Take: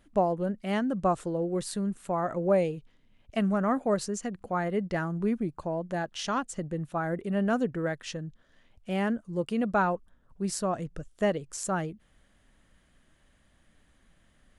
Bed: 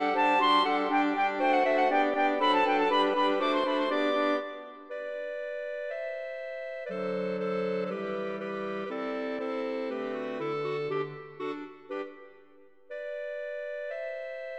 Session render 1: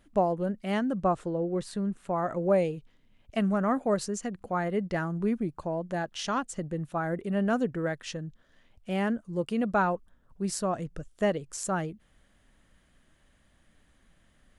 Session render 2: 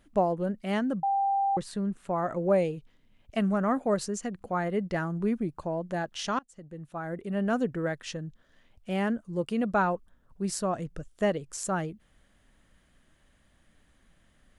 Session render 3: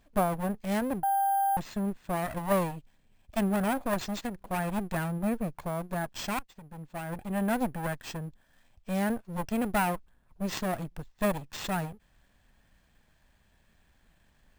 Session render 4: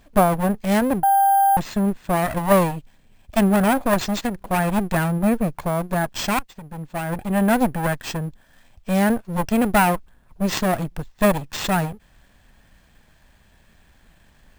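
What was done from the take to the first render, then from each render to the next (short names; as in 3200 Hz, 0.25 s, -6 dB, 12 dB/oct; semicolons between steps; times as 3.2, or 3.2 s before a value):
1.03–2.16 LPF 3200 Hz 6 dB/oct
1.03–1.57 bleep 790 Hz -23 dBFS; 6.39–7.62 fade in, from -24 dB
minimum comb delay 1.2 ms; sample-and-hold 4×
gain +10.5 dB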